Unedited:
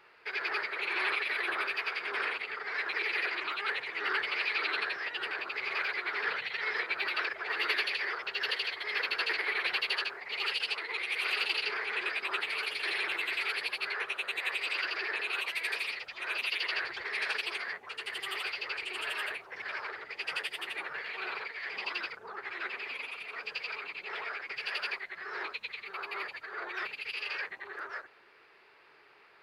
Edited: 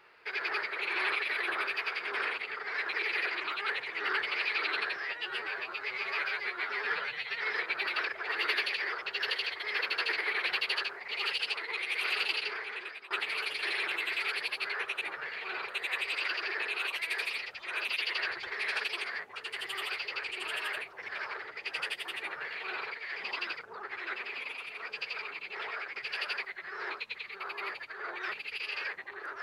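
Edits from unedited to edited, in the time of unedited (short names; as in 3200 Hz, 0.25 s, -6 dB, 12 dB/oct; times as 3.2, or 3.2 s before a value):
5–6.59 stretch 1.5×
11.48–12.31 fade out, to -17 dB
20.74–21.41 copy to 14.22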